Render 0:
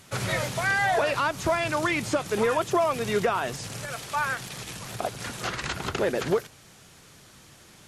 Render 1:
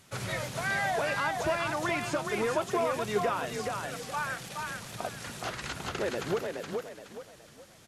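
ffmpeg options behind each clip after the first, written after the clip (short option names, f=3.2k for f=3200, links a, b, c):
-filter_complex "[0:a]asplit=5[a][b][c][d][e];[b]adelay=421,afreqshift=32,volume=-4dB[f];[c]adelay=842,afreqshift=64,volume=-13.4dB[g];[d]adelay=1263,afreqshift=96,volume=-22.7dB[h];[e]adelay=1684,afreqshift=128,volume=-32.1dB[i];[a][f][g][h][i]amix=inputs=5:normalize=0,volume=-6.5dB"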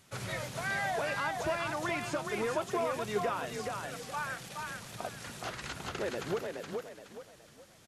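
-af "aresample=32000,aresample=44100,volume=-3.5dB"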